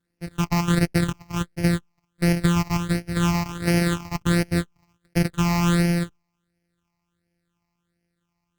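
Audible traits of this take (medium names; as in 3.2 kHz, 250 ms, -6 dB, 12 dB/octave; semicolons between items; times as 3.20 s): a buzz of ramps at a fixed pitch in blocks of 256 samples; phasing stages 8, 1.4 Hz, lowest notch 450–1100 Hz; Opus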